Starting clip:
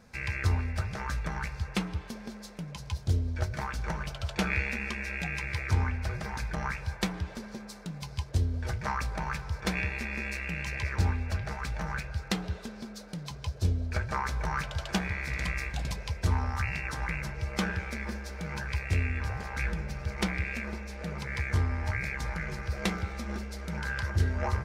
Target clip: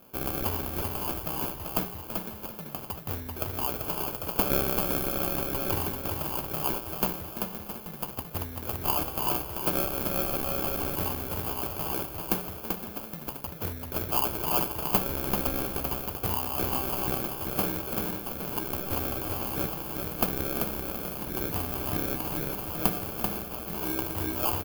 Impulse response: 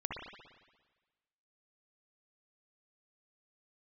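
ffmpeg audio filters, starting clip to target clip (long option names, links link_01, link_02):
-filter_complex "[0:a]highpass=frequency=390:poles=1,highshelf=frequency=6100:gain=9,acrusher=samples=23:mix=1:aa=0.000001,aexciter=amount=8.6:drive=3.8:freq=11000,asplit=2[link_01][link_02];[link_02]aecho=0:1:388:0.596[link_03];[link_01][link_03]amix=inputs=2:normalize=0,volume=2dB"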